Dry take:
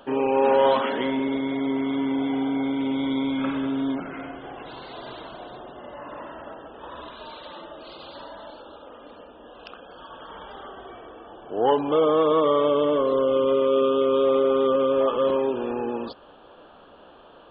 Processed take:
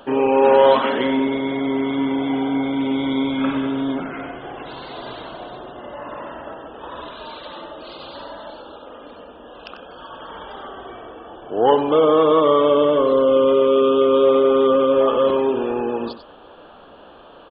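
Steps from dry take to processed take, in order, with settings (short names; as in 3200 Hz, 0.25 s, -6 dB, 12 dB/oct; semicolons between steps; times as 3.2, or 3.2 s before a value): echo 94 ms -11 dB; gain +5 dB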